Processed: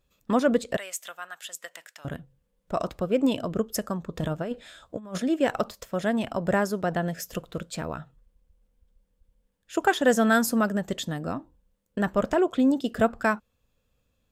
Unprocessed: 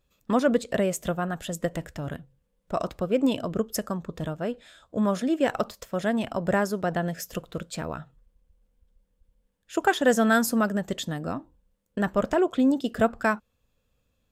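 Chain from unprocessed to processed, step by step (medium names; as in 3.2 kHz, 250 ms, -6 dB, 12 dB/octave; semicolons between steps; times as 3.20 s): 0.77–2.05 s: high-pass 1.5 kHz 12 dB/octave; 4.17–5.18 s: compressor with a negative ratio -30 dBFS, ratio -0.5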